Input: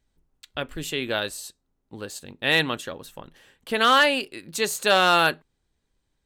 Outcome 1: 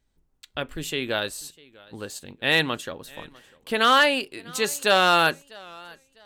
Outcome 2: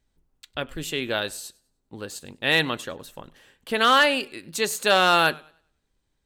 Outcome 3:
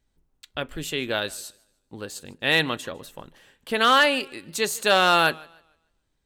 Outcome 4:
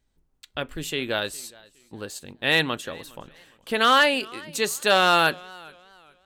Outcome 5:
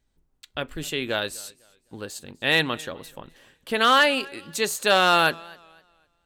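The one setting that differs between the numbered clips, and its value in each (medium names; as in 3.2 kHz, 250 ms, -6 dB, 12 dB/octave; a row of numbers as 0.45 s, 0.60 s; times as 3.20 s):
modulated delay, time: 648 ms, 100 ms, 150 ms, 414 ms, 253 ms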